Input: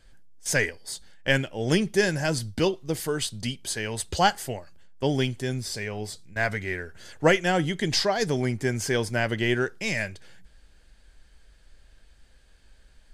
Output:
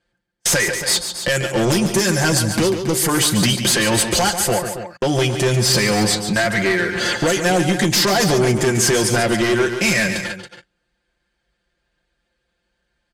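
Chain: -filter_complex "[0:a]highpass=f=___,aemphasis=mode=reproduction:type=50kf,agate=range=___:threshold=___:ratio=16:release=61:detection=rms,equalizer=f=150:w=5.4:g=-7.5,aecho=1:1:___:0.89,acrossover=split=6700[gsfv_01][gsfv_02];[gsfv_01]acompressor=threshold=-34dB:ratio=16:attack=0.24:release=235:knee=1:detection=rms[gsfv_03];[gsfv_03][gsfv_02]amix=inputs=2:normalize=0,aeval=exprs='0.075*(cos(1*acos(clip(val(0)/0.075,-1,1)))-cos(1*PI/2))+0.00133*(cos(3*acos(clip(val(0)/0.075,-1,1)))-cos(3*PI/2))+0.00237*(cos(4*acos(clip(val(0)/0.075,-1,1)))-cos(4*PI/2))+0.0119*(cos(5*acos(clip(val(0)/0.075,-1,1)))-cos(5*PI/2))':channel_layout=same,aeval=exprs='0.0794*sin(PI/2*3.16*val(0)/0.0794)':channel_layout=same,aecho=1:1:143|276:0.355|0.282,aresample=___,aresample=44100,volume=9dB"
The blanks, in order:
89, -37dB, -55dB, 5.7, 32000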